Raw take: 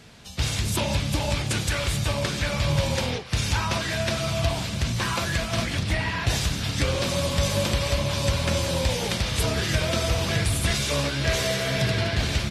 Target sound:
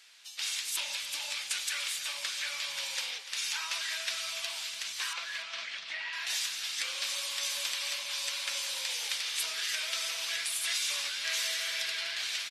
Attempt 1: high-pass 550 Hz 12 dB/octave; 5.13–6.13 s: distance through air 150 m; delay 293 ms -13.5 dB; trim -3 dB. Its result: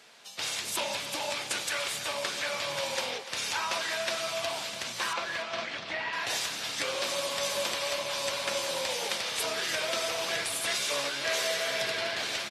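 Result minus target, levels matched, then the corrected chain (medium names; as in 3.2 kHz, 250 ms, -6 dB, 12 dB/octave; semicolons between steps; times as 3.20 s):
500 Hz band +17.0 dB
high-pass 2 kHz 12 dB/octave; 5.13–6.13 s: distance through air 150 m; delay 293 ms -13.5 dB; trim -3 dB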